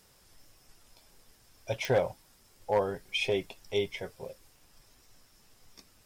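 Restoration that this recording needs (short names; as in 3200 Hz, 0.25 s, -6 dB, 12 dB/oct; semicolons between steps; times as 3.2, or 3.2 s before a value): clip repair -19 dBFS; de-click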